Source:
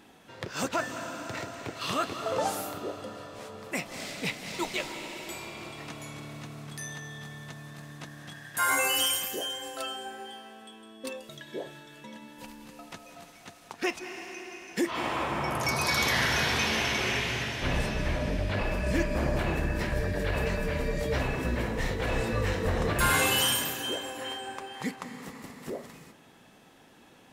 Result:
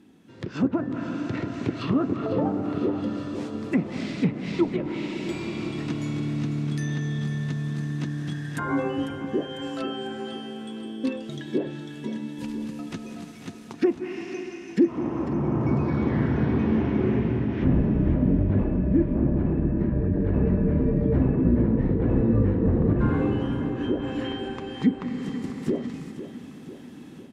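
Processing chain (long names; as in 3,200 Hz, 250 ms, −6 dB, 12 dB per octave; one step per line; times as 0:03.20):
treble cut that deepens with the level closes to 910 Hz, closed at −28 dBFS
high-pass filter 110 Hz 6 dB per octave
low shelf with overshoot 430 Hz +12 dB, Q 1.5
automatic gain control
on a send: repeating echo 498 ms, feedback 55%, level −12 dB
on the sum: level −8.5 dB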